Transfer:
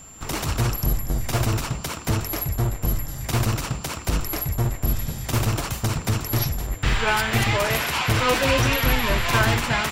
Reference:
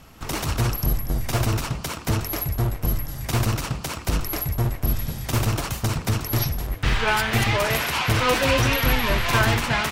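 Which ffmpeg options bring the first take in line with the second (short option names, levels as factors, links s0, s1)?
-af "bandreject=f=7300:w=30"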